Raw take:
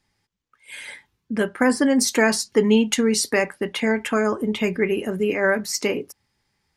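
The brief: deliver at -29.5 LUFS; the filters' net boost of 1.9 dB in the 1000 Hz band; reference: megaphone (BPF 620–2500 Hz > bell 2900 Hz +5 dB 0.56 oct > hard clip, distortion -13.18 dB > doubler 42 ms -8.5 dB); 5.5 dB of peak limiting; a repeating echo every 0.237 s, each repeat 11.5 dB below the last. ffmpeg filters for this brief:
-filter_complex "[0:a]equalizer=f=1k:t=o:g=3.5,alimiter=limit=-10.5dB:level=0:latency=1,highpass=620,lowpass=2.5k,equalizer=f=2.9k:t=o:w=0.56:g=5,aecho=1:1:237|474|711:0.266|0.0718|0.0194,asoftclip=type=hard:threshold=-20dB,asplit=2[a][b];[b]adelay=42,volume=-8.5dB[c];[a][c]amix=inputs=2:normalize=0,volume=-1.5dB"

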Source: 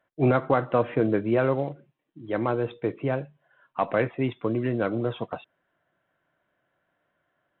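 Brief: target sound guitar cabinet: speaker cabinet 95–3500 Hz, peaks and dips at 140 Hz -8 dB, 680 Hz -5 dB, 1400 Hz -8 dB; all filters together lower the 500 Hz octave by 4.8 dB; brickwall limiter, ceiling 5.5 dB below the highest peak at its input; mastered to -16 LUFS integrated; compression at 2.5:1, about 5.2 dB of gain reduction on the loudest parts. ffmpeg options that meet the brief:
-af "equalizer=f=500:t=o:g=-4.5,acompressor=threshold=-26dB:ratio=2.5,alimiter=limit=-20.5dB:level=0:latency=1,highpass=95,equalizer=f=140:t=q:w=4:g=-8,equalizer=f=680:t=q:w=4:g=-5,equalizer=f=1.4k:t=q:w=4:g=-8,lowpass=f=3.5k:w=0.5412,lowpass=f=3.5k:w=1.3066,volume=19dB"

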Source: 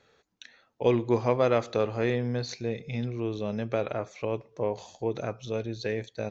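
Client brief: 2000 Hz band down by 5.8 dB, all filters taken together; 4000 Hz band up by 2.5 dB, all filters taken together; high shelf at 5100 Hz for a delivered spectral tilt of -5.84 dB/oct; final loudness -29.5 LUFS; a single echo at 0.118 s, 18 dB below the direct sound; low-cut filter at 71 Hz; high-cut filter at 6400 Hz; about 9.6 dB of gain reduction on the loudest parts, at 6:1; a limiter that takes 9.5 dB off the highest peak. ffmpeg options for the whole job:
-af "highpass=71,lowpass=6.4k,equalizer=f=2k:t=o:g=-9,equalizer=f=4k:t=o:g=8.5,highshelf=f=5.1k:g=-6.5,acompressor=threshold=-29dB:ratio=6,alimiter=level_in=3.5dB:limit=-24dB:level=0:latency=1,volume=-3.5dB,aecho=1:1:118:0.126,volume=9dB"

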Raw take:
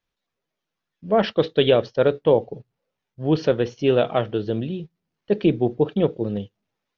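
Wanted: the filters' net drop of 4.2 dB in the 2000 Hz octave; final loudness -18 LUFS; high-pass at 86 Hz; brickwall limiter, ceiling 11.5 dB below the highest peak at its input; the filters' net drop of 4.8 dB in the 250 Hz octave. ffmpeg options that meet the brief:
-af "highpass=86,equalizer=f=250:t=o:g=-7,equalizer=f=2k:t=o:g=-6,volume=12.5dB,alimiter=limit=-6.5dB:level=0:latency=1"

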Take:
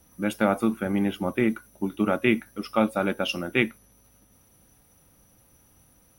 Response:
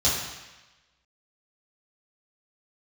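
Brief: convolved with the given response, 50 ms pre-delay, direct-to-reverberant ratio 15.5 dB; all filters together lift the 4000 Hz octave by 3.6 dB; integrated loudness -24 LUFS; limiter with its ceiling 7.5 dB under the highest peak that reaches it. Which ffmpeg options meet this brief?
-filter_complex "[0:a]equalizer=f=4k:t=o:g=5.5,alimiter=limit=-12.5dB:level=0:latency=1,asplit=2[a][b];[1:a]atrim=start_sample=2205,adelay=50[c];[b][c]afir=irnorm=-1:irlink=0,volume=-29dB[d];[a][d]amix=inputs=2:normalize=0,volume=3dB"

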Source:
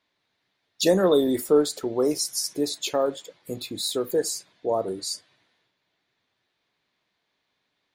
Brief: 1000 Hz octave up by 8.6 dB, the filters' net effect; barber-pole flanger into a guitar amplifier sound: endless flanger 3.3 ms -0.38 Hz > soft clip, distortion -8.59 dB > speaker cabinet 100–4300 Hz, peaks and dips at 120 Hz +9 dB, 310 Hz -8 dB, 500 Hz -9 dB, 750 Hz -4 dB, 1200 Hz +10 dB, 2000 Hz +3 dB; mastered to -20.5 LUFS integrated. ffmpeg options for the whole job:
-filter_complex "[0:a]equalizer=f=1k:t=o:g=7,asplit=2[a][b];[b]adelay=3.3,afreqshift=-0.38[c];[a][c]amix=inputs=2:normalize=1,asoftclip=threshold=-22.5dB,highpass=100,equalizer=f=120:t=q:w=4:g=9,equalizer=f=310:t=q:w=4:g=-8,equalizer=f=500:t=q:w=4:g=-9,equalizer=f=750:t=q:w=4:g=-4,equalizer=f=1.2k:t=q:w=4:g=10,equalizer=f=2k:t=q:w=4:g=3,lowpass=f=4.3k:w=0.5412,lowpass=f=4.3k:w=1.3066,volume=13dB"

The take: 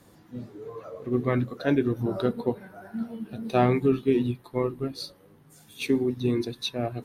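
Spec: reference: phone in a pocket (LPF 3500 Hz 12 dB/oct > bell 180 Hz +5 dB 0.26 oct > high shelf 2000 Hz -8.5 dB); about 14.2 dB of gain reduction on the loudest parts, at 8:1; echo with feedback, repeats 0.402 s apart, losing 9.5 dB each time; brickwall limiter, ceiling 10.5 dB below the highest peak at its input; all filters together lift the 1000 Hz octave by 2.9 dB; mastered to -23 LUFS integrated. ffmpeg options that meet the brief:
-af "equalizer=f=1k:t=o:g=6.5,acompressor=threshold=-31dB:ratio=8,alimiter=level_in=4.5dB:limit=-24dB:level=0:latency=1,volume=-4.5dB,lowpass=3.5k,equalizer=f=180:t=o:w=0.26:g=5,highshelf=f=2k:g=-8.5,aecho=1:1:402|804|1206|1608:0.335|0.111|0.0365|0.012,volume=16dB"

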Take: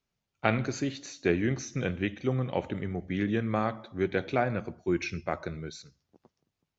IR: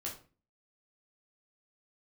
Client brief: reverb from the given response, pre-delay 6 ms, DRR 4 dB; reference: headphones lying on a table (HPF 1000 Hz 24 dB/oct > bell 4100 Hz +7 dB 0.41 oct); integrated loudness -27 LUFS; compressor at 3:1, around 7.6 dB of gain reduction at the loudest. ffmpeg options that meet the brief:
-filter_complex "[0:a]acompressor=threshold=-31dB:ratio=3,asplit=2[a][b];[1:a]atrim=start_sample=2205,adelay=6[c];[b][c]afir=irnorm=-1:irlink=0,volume=-3.5dB[d];[a][d]amix=inputs=2:normalize=0,highpass=f=1k:w=0.5412,highpass=f=1k:w=1.3066,equalizer=f=4.1k:t=o:w=0.41:g=7,volume=14.5dB"

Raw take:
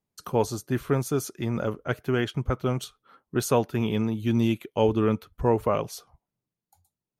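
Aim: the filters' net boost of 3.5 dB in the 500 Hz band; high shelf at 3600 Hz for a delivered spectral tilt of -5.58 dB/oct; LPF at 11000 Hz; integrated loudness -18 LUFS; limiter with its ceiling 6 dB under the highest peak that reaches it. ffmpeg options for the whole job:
-af "lowpass=11k,equalizer=f=500:t=o:g=4,highshelf=f=3.6k:g=6.5,volume=8dB,alimiter=limit=-4.5dB:level=0:latency=1"

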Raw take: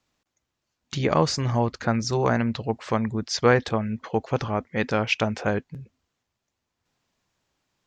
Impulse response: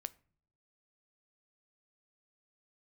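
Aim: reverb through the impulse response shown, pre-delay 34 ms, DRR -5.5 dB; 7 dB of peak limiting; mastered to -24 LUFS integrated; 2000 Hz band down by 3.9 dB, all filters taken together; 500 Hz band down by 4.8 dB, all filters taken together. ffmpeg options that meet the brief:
-filter_complex "[0:a]equalizer=f=500:t=o:g=-5.5,equalizer=f=2k:t=o:g=-5,alimiter=limit=-13.5dB:level=0:latency=1,asplit=2[a][b];[1:a]atrim=start_sample=2205,adelay=34[c];[b][c]afir=irnorm=-1:irlink=0,volume=8.5dB[d];[a][d]amix=inputs=2:normalize=0,volume=-2.5dB"

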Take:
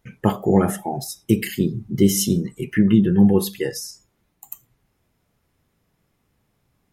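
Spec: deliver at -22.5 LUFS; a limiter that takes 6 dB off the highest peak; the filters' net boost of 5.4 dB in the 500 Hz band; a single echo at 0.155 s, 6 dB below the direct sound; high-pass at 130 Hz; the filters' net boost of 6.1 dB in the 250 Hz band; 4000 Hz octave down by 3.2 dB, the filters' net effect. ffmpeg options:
-af "highpass=130,equalizer=f=250:t=o:g=8.5,equalizer=f=500:t=o:g=3.5,equalizer=f=4k:t=o:g=-5,alimiter=limit=-4dB:level=0:latency=1,aecho=1:1:155:0.501,volume=-6.5dB"

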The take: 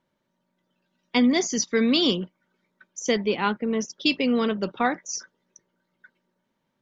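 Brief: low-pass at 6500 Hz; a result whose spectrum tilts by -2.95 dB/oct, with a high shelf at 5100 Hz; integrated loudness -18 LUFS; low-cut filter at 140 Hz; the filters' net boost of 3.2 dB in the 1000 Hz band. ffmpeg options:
-af "highpass=140,lowpass=6.5k,equalizer=f=1k:t=o:g=4,highshelf=f=5.1k:g=4,volume=5.5dB"

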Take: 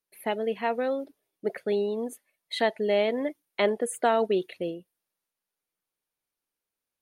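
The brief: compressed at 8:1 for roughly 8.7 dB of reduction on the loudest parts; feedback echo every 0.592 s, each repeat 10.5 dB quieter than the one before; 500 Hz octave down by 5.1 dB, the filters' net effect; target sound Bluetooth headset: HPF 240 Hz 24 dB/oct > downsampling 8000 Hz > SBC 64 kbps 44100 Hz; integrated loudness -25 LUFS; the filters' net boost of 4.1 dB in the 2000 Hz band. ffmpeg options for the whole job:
-af "equalizer=f=500:t=o:g=-7,equalizer=f=2k:t=o:g=5,acompressor=threshold=-29dB:ratio=8,highpass=f=240:w=0.5412,highpass=f=240:w=1.3066,aecho=1:1:592|1184|1776:0.299|0.0896|0.0269,aresample=8000,aresample=44100,volume=11.5dB" -ar 44100 -c:a sbc -b:a 64k

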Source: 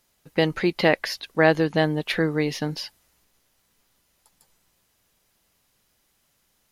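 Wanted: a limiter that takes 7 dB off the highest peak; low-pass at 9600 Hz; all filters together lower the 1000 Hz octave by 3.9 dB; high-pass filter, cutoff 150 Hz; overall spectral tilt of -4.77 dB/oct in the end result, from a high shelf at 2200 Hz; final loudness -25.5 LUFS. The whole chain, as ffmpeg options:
-af "highpass=150,lowpass=9.6k,equalizer=f=1k:t=o:g=-4.5,highshelf=f=2.2k:g=-5.5,volume=2dB,alimiter=limit=-11.5dB:level=0:latency=1"

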